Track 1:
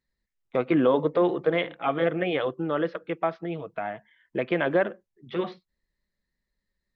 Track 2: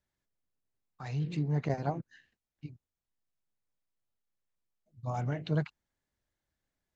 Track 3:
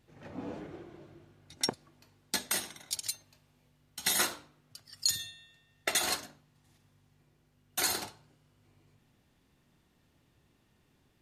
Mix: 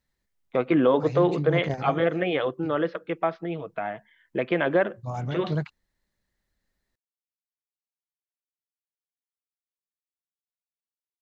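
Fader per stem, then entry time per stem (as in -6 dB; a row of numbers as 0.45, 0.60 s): +1.0 dB, +2.5 dB, off; 0.00 s, 0.00 s, off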